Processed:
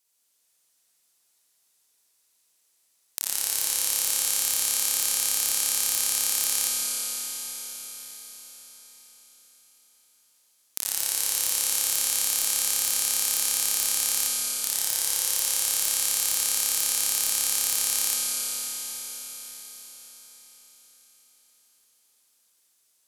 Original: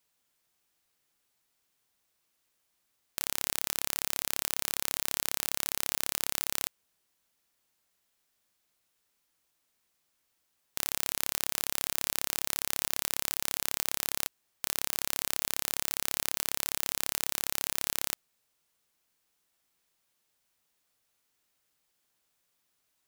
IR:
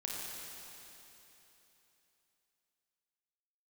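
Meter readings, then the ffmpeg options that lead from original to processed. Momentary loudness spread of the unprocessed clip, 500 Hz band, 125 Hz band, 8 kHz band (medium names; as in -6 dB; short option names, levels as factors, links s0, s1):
3 LU, 0.0 dB, no reading, +12.0 dB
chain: -filter_complex "[0:a]bass=f=250:g=-7,treble=f=4000:g=11[s0];[1:a]atrim=start_sample=2205,asetrate=26019,aresample=44100[s1];[s0][s1]afir=irnorm=-1:irlink=0,volume=0.631"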